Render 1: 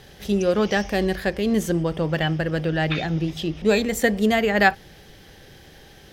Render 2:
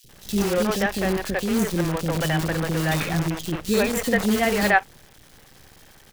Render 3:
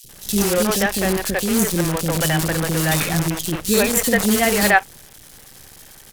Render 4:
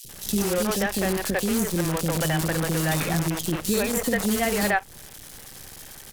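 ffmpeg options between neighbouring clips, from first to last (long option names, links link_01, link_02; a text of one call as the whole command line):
ffmpeg -i in.wav -filter_complex "[0:a]acrusher=bits=5:dc=4:mix=0:aa=0.000001,acrossover=split=410|3100[link_01][link_02][link_03];[link_01]adelay=40[link_04];[link_02]adelay=90[link_05];[link_04][link_05][link_03]amix=inputs=3:normalize=0" out.wav
ffmpeg -i in.wav -af "equalizer=frequency=11000:width=0.48:gain=10.5,volume=3dB" out.wav
ffmpeg -i in.wav -filter_complex "[0:a]acrossover=split=100|1400[link_01][link_02][link_03];[link_01]acompressor=threshold=-40dB:ratio=4[link_04];[link_02]acompressor=threshold=-24dB:ratio=4[link_05];[link_03]acompressor=threshold=-29dB:ratio=4[link_06];[link_04][link_05][link_06]amix=inputs=3:normalize=0,volume=1dB" out.wav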